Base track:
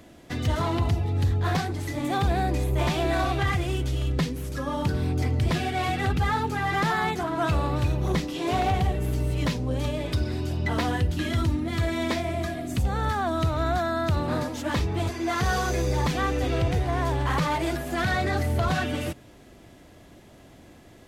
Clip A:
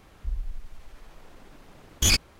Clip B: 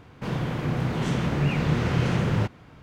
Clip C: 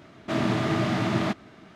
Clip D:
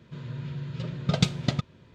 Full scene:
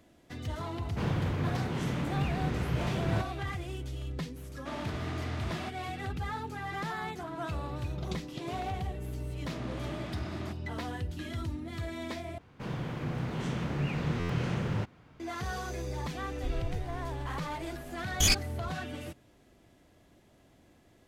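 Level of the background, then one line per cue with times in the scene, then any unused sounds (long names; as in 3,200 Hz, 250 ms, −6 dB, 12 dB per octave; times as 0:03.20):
base track −11.5 dB
0:00.75: mix in B −7.5 dB + speech leveller
0:04.37: mix in C −11 dB + low-shelf EQ 450 Hz −10 dB
0:06.89: mix in D −18 dB
0:09.20: mix in C −15.5 dB
0:12.38: overwrite with B −8 dB + buffer that repeats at 0:01.81
0:16.18: mix in A −4 dB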